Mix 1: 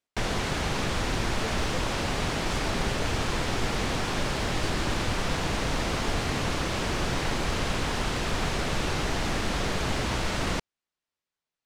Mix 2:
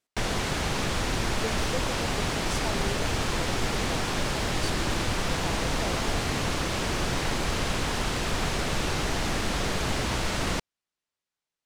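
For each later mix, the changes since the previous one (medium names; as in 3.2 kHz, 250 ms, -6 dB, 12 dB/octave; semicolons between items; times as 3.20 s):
speech +5.0 dB; master: add treble shelf 7.1 kHz +5.5 dB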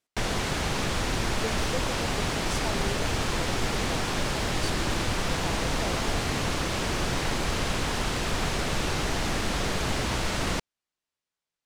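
no change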